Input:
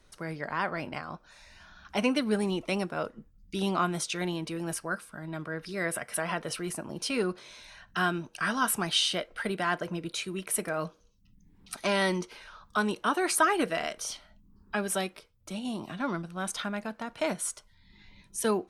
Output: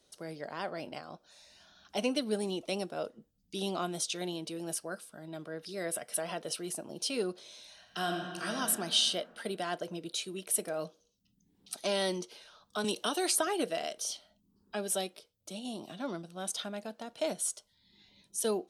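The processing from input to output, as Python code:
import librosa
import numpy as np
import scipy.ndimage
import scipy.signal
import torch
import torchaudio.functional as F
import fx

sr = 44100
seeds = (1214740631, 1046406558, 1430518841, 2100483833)

y = fx.reverb_throw(x, sr, start_s=7.73, length_s=0.83, rt60_s=2.3, drr_db=1.5)
y = fx.band_squash(y, sr, depth_pct=70, at=(12.84, 13.47))
y = fx.highpass(y, sr, hz=440.0, slope=6)
y = fx.band_shelf(y, sr, hz=1500.0, db=-10.5, octaves=1.7)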